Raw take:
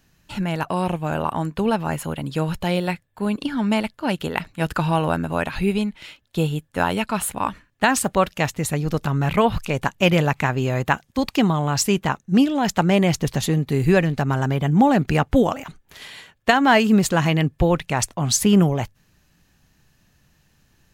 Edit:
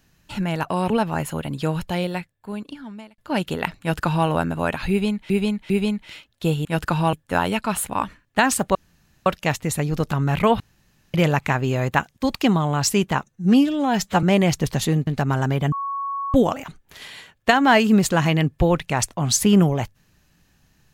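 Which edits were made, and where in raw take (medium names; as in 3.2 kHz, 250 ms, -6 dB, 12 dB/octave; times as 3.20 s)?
0.90–1.63 s: delete
2.35–3.91 s: fade out
4.53–5.01 s: copy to 6.58 s
5.63–6.03 s: loop, 3 plays
8.20 s: insert room tone 0.51 s
9.54–10.08 s: room tone
12.18–12.84 s: stretch 1.5×
13.68–14.07 s: delete
14.72–15.34 s: bleep 1.11 kHz -24 dBFS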